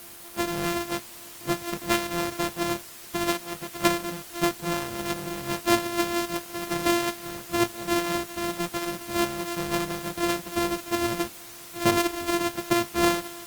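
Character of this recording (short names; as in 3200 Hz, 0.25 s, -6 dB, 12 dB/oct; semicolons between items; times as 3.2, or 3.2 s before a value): a buzz of ramps at a fixed pitch in blocks of 128 samples; tremolo triangle 3.7 Hz, depth 40%; a quantiser's noise floor 8-bit, dither triangular; Opus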